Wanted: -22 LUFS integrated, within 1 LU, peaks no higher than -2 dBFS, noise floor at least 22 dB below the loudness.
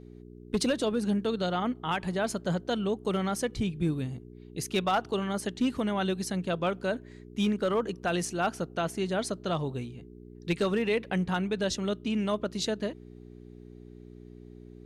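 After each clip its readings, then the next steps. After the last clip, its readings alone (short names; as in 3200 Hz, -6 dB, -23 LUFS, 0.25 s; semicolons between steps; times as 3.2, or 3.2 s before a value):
clipped 0.4%; flat tops at -20.0 dBFS; hum 60 Hz; harmonics up to 420 Hz; hum level -46 dBFS; loudness -30.5 LUFS; peak -20.0 dBFS; loudness target -22.0 LUFS
-> clip repair -20 dBFS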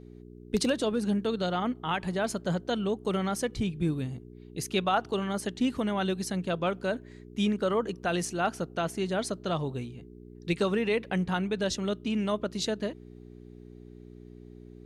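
clipped 0.0%; hum 60 Hz; harmonics up to 420 Hz; hum level -46 dBFS
-> de-hum 60 Hz, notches 7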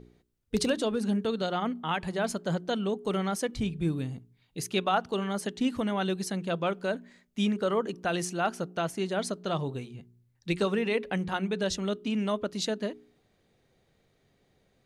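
hum none; loudness -30.5 LUFS; peak -12.5 dBFS; loudness target -22.0 LUFS
-> gain +8.5 dB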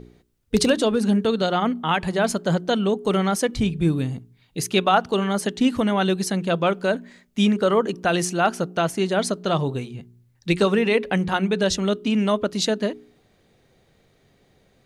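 loudness -22.0 LUFS; peak -4.0 dBFS; noise floor -62 dBFS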